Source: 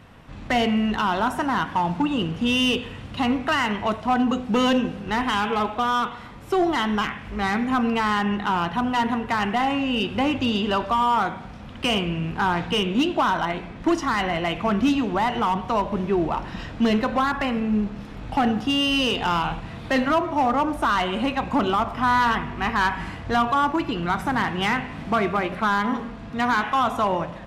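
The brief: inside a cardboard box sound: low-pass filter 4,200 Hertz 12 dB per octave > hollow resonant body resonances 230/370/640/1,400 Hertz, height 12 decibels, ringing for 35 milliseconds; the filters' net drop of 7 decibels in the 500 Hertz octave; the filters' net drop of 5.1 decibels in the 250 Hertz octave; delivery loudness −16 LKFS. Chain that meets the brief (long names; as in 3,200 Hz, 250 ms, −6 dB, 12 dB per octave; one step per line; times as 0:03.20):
low-pass filter 4,200 Hz 12 dB per octave
parametric band 250 Hz −4 dB
parametric band 500 Hz −8.5 dB
hollow resonant body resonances 230/370/640/1,400 Hz, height 12 dB, ringing for 35 ms
level +4 dB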